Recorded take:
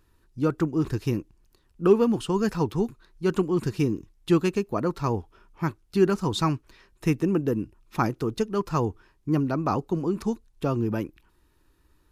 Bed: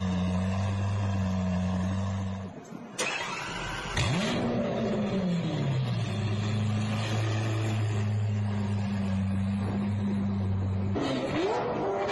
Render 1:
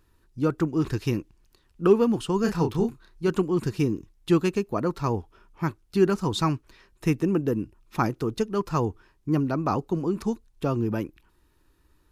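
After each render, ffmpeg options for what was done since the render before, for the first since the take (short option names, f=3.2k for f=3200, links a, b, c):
-filter_complex "[0:a]asettb=1/sr,asplit=3[a][b][c];[a]atrim=end=0.664[d];[b]atrim=start=0.66:end=1.87,asetpts=PTS-STARTPTS,afade=t=in:d=0.004:c=qsin,afade=t=out:st=1.206:d=0.004:c=qsin,equalizer=f=2.9k:t=o:w=2.6:g=4[e];[c]atrim=start=1.866[f];[d][e]acrossfade=d=0.004:c1=hsin:c2=qsin[g];[g][f]acrossfade=d=0.004:c1=qsin:c2=hsin,asettb=1/sr,asplit=3[h][i][j];[h]atrim=end=2.414[k];[i]atrim=start=2.41:end=3.28,asetpts=PTS-STARTPTS,afade=t=in:d=0.004:c=qsin,afade=t=out:st=0.866:d=0.004:c=qsin,asplit=2[l][m];[m]adelay=30,volume=-5dB[n];[l][n]amix=inputs=2:normalize=0,atrim=end_sample=38367[o];[j]atrim=start=3.276[p];[k][o]acrossfade=d=0.004:c1=hsin:c2=qsin[q];[q][p]acrossfade=d=0.004:c1=qsin:c2=hsin"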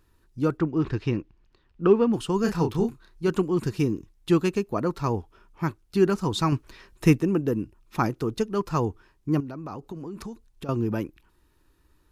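-filter_complex "[0:a]asplit=3[a][b][c];[a]afade=t=out:st=0.57:d=0.02[d];[b]lowpass=3.4k,afade=t=in:st=0.57:d=0.02,afade=t=out:st=2.12:d=0.02[e];[c]afade=t=in:st=2.12:d=0.02[f];[d][e][f]amix=inputs=3:normalize=0,asettb=1/sr,asplit=3[g][h][i];[g]atrim=end=6.524[j];[h]atrim=start=6.52:end=7.18,asetpts=PTS-STARTPTS,afade=t=in:d=0.004:c=qsin,afade=t=out:st=0.656:d=0.004:c=qsin,acontrast=46[k];[i]atrim=start=7.176[l];[j][k]acrossfade=d=0.004:c1=hsin:c2=qsin[m];[m][l]acrossfade=d=0.004:c1=qsin:c2=hsin,asettb=1/sr,asplit=3[n][o][p];[n]atrim=end=9.404[q];[o]atrim=start=9.4:end=10.69,asetpts=PTS-STARTPTS,afade=t=in:d=0.004:c=qsin,afade=t=out:st=1.286:d=0.004:c=qsin,acompressor=threshold=-33dB:ratio=6:attack=3.2:release=140:knee=1:detection=peak[r];[p]atrim=start=10.686[s];[q][r]acrossfade=d=0.004:c1=hsin:c2=qsin[t];[t][s]acrossfade=d=0.004:c1=qsin:c2=hsin"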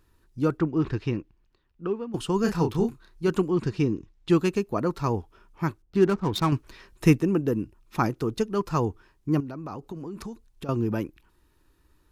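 -filter_complex "[0:a]asettb=1/sr,asplit=3[a][b][c];[a]atrim=end=3.514[d];[b]atrim=start=3.51:end=4.3,asetpts=PTS-STARTPTS,afade=t=in:d=0.004:c=qsin,afade=t=out:st=0.786:d=0.004:c=qsin,lowpass=5.2k[e];[c]atrim=start=4.296[f];[d][e]acrossfade=d=0.004:c1=hsin:c2=qsin[g];[g][f]acrossfade=d=0.004:c1=qsin:c2=hsin,asettb=1/sr,asplit=3[h][i][j];[h]atrim=end=5.824[k];[i]atrim=start=5.82:end=6.52,asetpts=PTS-STARTPTS,afade=t=in:d=0.004:c=qsin,afade=t=out:st=0.696:d=0.004:c=qsin,adynamicsmooth=sensitivity=7:basefreq=960[l];[j]atrim=start=6.516[m];[k][l]acrossfade=d=0.004:c1=hsin:c2=qsin[n];[n][m]acrossfade=d=0.004:c1=qsin:c2=hsin,asplit=2[o][p];[o]atrim=end=2.14,asetpts=PTS-STARTPTS,afade=t=out:st=0.81:d=1.33:silence=0.158489[q];[p]atrim=start=2.14,asetpts=PTS-STARTPTS,afade=t=in:d=0.004:c=hsin:silence=0.158489[r];[q][r]concat=n=2:v=0:a=1"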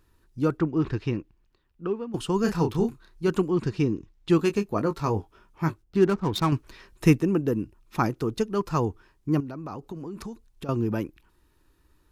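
-filter_complex "[0:a]asettb=1/sr,asplit=3[a][b][c];[a]atrim=end=4.374[d];[b]atrim=start=4.37:end=5.84,asetpts=PTS-STARTPTS,afade=t=in:d=0.004:c=qsin,afade=t=out:st=1.466:d=0.004:c=qsin,asplit=2[e][f];[f]adelay=19,volume=-8dB[g];[e][g]amix=inputs=2:normalize=0,atrim=end_sample=64827[h];[c]atrim=start=5.836[i];[d][h]acrossfade=d=0.004:c1=hsin:c2=qsin[j];[j][i]acrossfade=d=0.004:c1=qsin:c2=hsin"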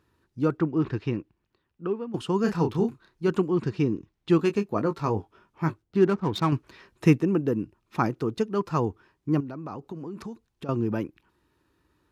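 -af "highpass=95,highshelf=f=6.3k:g=-11"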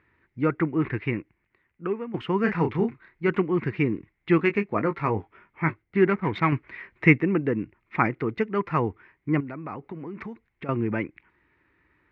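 -af "lowpass=f=2.1k:t=q:w=9.2"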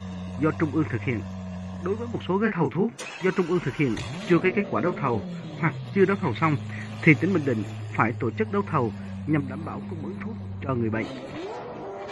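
-filter_complex "[1:a]volume=-6.5dB[a];[0:a][a]amix=inputs=2:normalize=0"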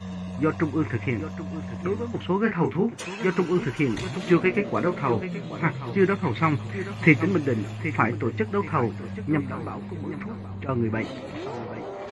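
-filter_complex "[0:a]asplit=2[a][b];[b]adelay=17,volume=-12.5dB[c];[a][c]amix=inputs=2:normalize=0,aecho=1:1:776|1552|2328:0.224|0.0716|0.0229"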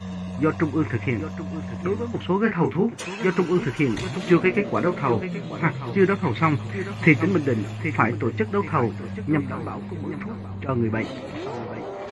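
-af "volume=2dB,alimiter=limit=-2dB:level=0:latency=1"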